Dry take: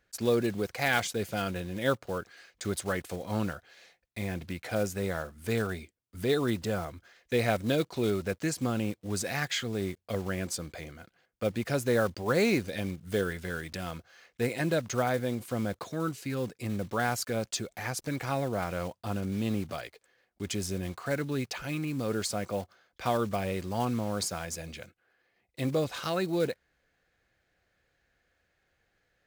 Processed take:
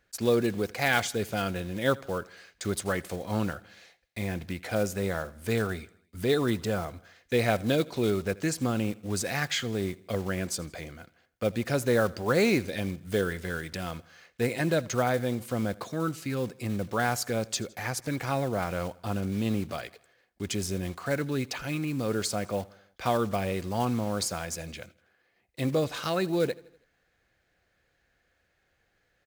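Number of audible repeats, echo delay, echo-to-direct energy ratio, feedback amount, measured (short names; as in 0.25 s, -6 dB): 3, 81 ms, -21.0 dB, 53%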